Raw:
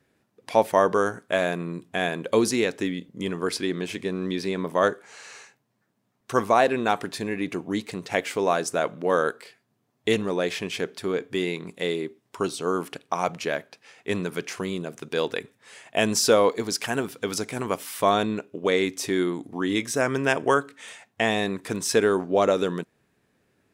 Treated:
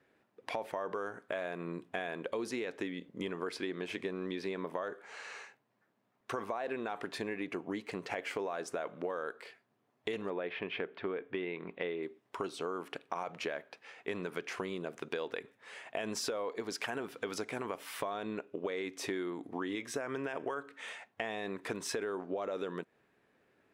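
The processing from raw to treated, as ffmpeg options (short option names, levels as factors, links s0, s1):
-filter_complex "[0:a]asettb=1/sr,asplit=3[s0][s1][s2];[s0]atrim=end=7.474[s3];[s1]atrim=start=7.47:end=8.42,asetpts=PTS-STARTPTS,afade=t=in:d=0.004:c=qsin,afade=t=out:st=0.946:d=0.004:c=qsin,bandreject=f=3700:w=12[s4];[s2]atrim=start=8.416[s5];[s3][s4]acrossfade=d=0.004:c1=hsin:c2=qsin[s6];[s6][s5]acrossfade=d=0.004:c1=qsin:c2=hsin,asettb=1/sr,asplit=3[s7][s8][s9];[s7]atrim=end=10.304[s10];[s8]atrim=start=10.3:end=12.03,asetpts=PTS-STARTPTS,afade=t=in:d=0.004:c=qsin,afade=t=out:st=1.726:d=0.004:c=qsin,lowpass=f=3100:w=0.5412,lowpass=f=3100:w=1.3066[s11];[s9]atrim=start=12.026[s12];[s10][s11]acrossfade=d=0.004:c1=hsin:c2=qsin[s13];[s13][s12]acrossfade=d=0.004:c1=qsin:c2=hsin,bass=f=250:g=-10,treble=f=4000:g=-12,alimiter=limit=0.141:level=0:latency=1:release=34,acompressor=threshold=0.02:ratio=6"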